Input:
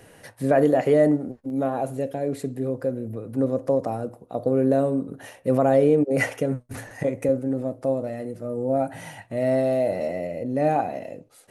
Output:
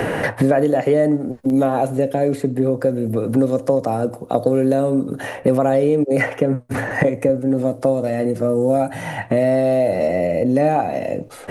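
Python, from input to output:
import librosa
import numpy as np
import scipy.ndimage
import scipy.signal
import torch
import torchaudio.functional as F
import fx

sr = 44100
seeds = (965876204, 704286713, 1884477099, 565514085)

y = fx.band_squash(x, sr, depth_pct=100)
y = F.gain(torch.from_numpy(y), 5.0).numpy()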